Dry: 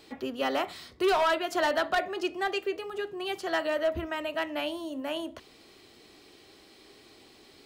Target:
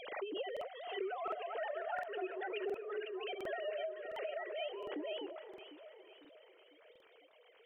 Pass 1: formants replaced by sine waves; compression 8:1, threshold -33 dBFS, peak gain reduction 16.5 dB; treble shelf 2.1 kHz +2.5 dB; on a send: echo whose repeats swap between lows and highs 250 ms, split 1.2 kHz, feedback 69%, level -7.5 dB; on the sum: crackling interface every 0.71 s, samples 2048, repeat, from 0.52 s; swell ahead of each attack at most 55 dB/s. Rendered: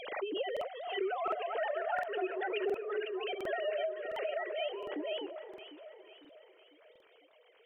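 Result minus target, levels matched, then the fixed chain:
compression: peak gain reduction -5.5 dB
formants replaced by sine waves; compression 8:1, threshold -39.5 dBFS, peak gain reduction 22 dB; treble shelf 2.1 kHz +2.5 dB; on a send: echo whose repeats swap between lows and highs 250 ms, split 1.2 kHz, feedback 69%, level -7.5 dB; on the sum: crackling interface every 0.71 s, samples 2048, repeat, from 0.52 s; swell ahead of each attack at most 55 dB/s

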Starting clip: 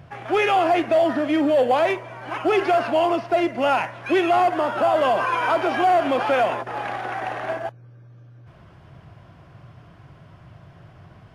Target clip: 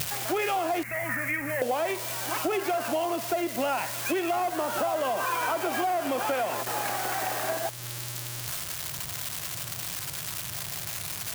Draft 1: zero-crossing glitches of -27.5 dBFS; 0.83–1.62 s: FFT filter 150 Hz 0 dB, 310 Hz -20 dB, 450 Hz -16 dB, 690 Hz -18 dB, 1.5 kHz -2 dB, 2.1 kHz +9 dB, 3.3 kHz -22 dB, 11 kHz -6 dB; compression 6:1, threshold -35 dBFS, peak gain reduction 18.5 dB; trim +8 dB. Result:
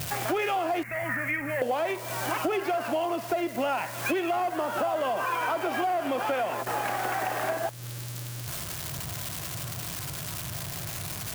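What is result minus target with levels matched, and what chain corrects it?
zero-crossing glitches: distortion -8 dB
zero-crossing glitches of -19 dBFS; 0.83–1.62 s: FFT filter 150 Hz 0 dB, 310 Hz -20 dB, 450 Hz -16 dB, 690 Hz -18 dB, 1.5 kHz -2 dB, 2.1 kHz +9 dB, 3.3 kHz -22 dB, 11 kHz -6 dB; compression 6:1, threshold -35 dBFS, peak gain reduction 18.5 dB; trim +8 dB

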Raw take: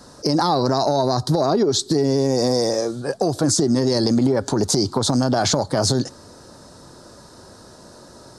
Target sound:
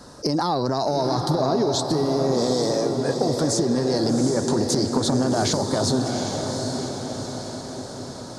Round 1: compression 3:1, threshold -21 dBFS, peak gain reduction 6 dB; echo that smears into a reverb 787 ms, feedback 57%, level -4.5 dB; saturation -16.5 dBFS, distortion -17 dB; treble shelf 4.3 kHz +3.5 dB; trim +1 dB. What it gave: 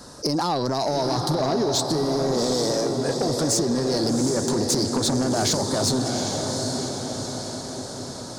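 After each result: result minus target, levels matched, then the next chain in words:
saturation: distortion +17 dB; 8 kHz band +4.0 dB
compression 3:1, threshold -21 dBFS, peak gain reduction 6 dB; echo that smears into a reverb 787 ms, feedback 57%, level -4.5 dB; saturation -6 dBFS, distortion -33 dB; treble shelf 4.3 kHz +3.5 dB; trim +1 dB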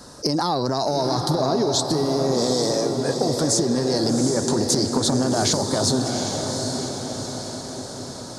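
8 kHz band +4.0 dB
compression 3:1, threshold -21 dBFS, peak gain reduction 6 dB; echo that smears into a reverb 787 ms, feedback 57%, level -4.5 dB; saturation -6 dBFS, distortion -33 dB; treble shelf 4.3 kHz -3 dB; trim +1 dB

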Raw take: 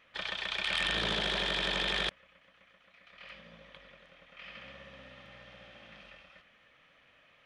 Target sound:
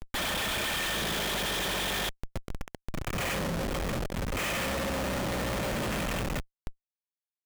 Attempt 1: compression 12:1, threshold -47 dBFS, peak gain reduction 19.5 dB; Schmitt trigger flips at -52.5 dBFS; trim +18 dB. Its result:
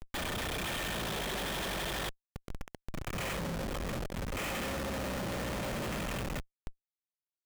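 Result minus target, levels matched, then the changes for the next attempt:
compression: peak gain reduction +6.5 dB
change: compression 12:1, threshold -40 dBFS, peak gain reduction 13 dB

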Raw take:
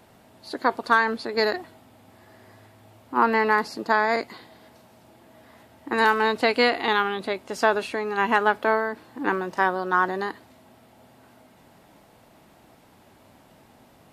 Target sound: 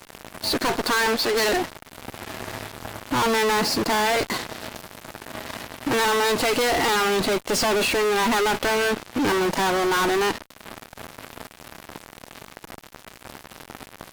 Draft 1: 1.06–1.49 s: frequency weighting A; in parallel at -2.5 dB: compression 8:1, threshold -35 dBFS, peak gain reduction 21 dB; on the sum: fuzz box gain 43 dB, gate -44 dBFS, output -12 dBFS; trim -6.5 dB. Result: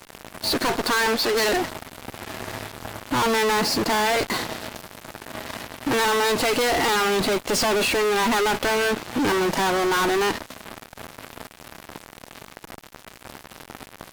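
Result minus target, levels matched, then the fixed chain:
compression: peak gain reduction -9 dB
1.06–1.49 s: frequency weighting A; in parallel at -2.5 dB: compression 8:1, threshold -45.5 dBFS, peak gain reduction 30 dB; on the sum: fuzz box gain 43 dB, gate -44 dBFS, output -12 dBFS; trim -6.5 dB

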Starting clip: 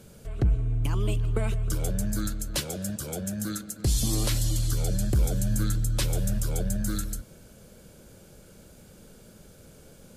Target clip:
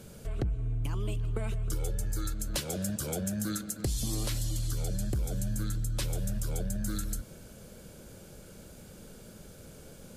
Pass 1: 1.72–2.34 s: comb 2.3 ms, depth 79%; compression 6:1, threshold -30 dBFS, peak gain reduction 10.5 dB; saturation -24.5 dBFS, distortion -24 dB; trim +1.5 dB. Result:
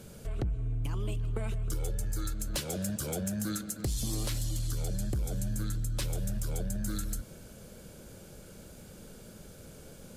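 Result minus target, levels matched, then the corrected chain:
saturation: distortion +13 dB
1.72–2.34 s: comb 2.3 ms, depth 79%; compression 6:1, threshold -30 dBFS, peak gain reduction 10.5 dB; saturation -17 dBFS, distortion -37 dB; trim +1.5 dB

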